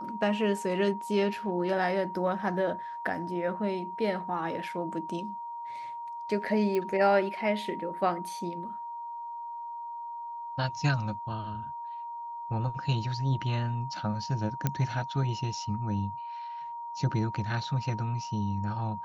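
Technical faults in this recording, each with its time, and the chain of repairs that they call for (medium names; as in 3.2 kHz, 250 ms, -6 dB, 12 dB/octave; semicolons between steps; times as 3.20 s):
whine 940 Hz -36 dBFS
6.75 s: pop -19 dBFS
14.67 s: pop -13 dBFS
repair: de-click; band-stop 940 Hz, Q 30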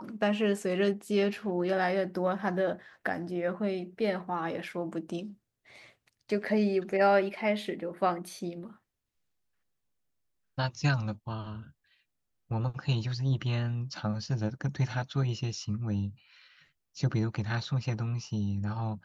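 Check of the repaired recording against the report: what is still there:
nothing left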